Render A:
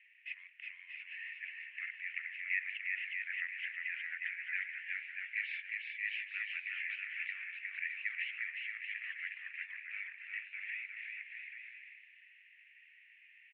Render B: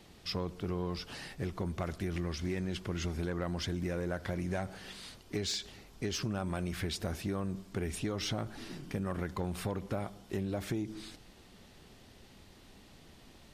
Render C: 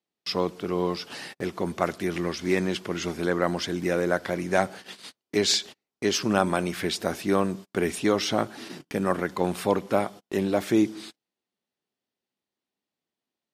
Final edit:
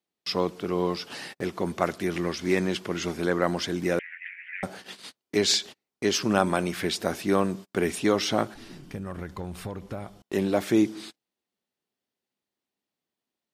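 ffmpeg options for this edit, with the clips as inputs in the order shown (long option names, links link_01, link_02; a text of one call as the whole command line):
ffmpeg -i take0.wav -i take1.wav -i take2.wav -filter_complex "[2:a]asplit=3[link_01][link_02][link_03];[link_01]atrim=end=3.992[link_04];[0:a]atrim=start=3.988:end=4.632[link_05];[link_02]atrim=start=4.628:end=8.542[link_06];[1:a]atrim=start=8.538:end=10.222[link_07];[link_03]atrim=start=10.218[link_08];[link_04][link_05]acrossfade=duration=0.004:curve1=hsin:curve2=hsin[link_09];[link_09][link_06]acrossfade=duration=0.004:curve1=hsin:curve2=hsin[link_10];[link_10][link_07]acrossfade=duration=0.004:curve1=hsin:curve2=hsin[link_11];[link_11][link_08]acrossfade=duration=0.004:curve1=hsin:curve2=hsin" out.wav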